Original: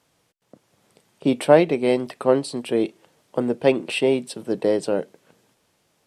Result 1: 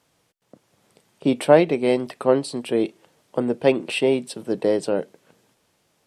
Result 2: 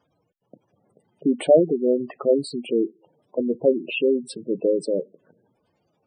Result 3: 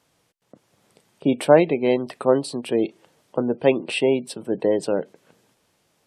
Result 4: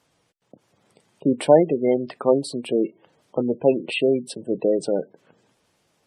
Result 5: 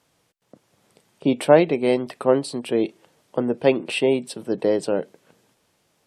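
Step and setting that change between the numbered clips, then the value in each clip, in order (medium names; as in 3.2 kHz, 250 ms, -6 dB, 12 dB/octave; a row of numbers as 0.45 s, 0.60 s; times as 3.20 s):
spectral gate, under each frame's peak: -60 dB, -10 dB, -35 dB, -20 dB, -45 dB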